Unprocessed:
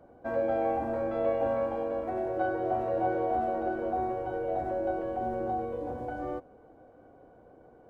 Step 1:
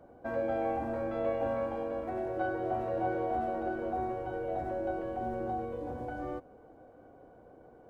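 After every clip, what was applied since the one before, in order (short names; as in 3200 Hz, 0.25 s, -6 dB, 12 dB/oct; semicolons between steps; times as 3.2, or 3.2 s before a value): dynamic EQ 600 Hz, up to -4 dB, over -38 dBFS, Q 0.7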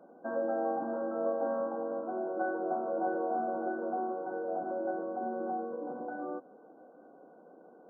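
brick-wall FIR band-pass 160–1600 Hz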